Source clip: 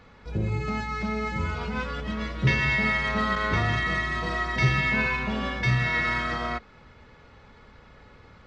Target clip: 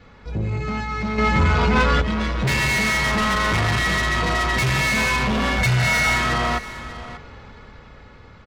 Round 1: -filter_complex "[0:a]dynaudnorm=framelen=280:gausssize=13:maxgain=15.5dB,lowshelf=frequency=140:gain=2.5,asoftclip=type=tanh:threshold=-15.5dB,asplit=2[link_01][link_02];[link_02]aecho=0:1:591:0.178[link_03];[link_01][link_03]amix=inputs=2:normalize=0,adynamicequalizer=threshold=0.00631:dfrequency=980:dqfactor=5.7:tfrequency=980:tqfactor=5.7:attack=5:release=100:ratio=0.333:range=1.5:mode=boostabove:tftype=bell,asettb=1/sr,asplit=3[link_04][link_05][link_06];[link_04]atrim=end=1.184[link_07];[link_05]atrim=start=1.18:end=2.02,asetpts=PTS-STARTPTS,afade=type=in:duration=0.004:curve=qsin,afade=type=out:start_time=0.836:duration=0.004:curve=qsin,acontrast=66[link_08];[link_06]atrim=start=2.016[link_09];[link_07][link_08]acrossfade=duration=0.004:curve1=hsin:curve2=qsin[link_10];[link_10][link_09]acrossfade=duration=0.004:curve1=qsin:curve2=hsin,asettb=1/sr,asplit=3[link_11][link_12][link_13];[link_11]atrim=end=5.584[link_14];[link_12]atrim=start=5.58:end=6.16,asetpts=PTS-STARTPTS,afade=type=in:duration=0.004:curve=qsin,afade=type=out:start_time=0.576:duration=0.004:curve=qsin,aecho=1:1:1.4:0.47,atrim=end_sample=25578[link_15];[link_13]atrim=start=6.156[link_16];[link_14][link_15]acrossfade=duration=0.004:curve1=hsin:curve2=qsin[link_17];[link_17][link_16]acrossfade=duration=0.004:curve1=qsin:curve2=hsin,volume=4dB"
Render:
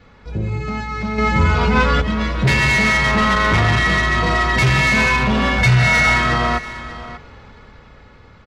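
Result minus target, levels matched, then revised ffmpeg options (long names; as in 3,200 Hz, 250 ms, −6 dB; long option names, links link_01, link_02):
soft clipping: distortion −4 dB
-filter_complex "[0:a]dynaudnorm=framelen=280:gausssize=13:maxgain=15.5dB,lowshelf=frequency=140:gain=2.5,asoftclip=type=tanh:threshold=-22.5dB,asplit=2[link_01][link_02];[link_02]aecho=0:1:591:0.178[link_03];[link_01][link_03]amix=inputs=2:normalize=0,adynamicequalizer=threshold=0.00631:dfrequency=980:dqfactor=5.7:tfrequency=980:tqfactor=5.7:attack=5:release=100:ratio=0.333:range=1.5:mode=boostabove:tftype=bell,asettb=1/sr,asplit=3[link_04][link_05][link_06];[link_04]atrim=end=1.184[link_07];[link_05]atrim=start=1.18:end=2.02,asetpts=PTS-STARTPTS,afade=type=in:duration=0.004:curve=qsin,afade=type=out:start_time=0.836:duration=0.004:curve=qsin,acontrast=66[link_08];[link_06]atrim=start=2.016[link_09];[link_07][link_08]acrossfade=duration=0.004:curve1=hsin:curve2=qsin[link_10];[link_10][link_09]acrossfade=duration=0.004:curve1=qsin:curve2=hsin,asettb=1/sr,asplit=3[link_11][link_12][link_13];[link_11]atrim=end=5.584[link_14];[link_12]atrim=start=5.58:end=6.16,asetpts=PTS-STARTPTS,afade=type=in:duration=0.004:curve=qsin,afade=type=out:start_time=0.576:duration=0.004:curve=qsin,aecho=1:1:1.4:0.47,atrim=end_sample=25578[link_15];[link_13]atrim=start=6.156[link_16];[link_14][link_15]acrossfade=duration=0.004:curve1=hsin:curve2=qsin[link_17];[link_17][link_16]acrossfade=duration=0.004:curve1=qsin:curve2=hsin,volume=4dB"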